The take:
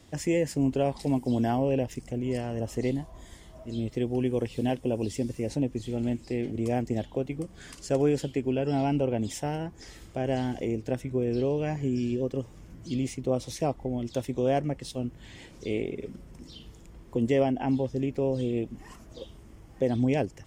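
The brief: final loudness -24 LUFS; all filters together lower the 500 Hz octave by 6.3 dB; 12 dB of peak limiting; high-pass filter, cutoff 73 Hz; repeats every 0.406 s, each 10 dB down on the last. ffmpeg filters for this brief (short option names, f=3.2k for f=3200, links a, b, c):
-af "highpass=73,equalizer=f=500:t=o:g=-8,alimiter=level_in=3.5dB:limit=-24dB:level=0:latency=1,volume=-3.5dB,aecho=1:1:406|812|1218|1624:0.316|0.101|0.0324|0.0104,volume=14dB"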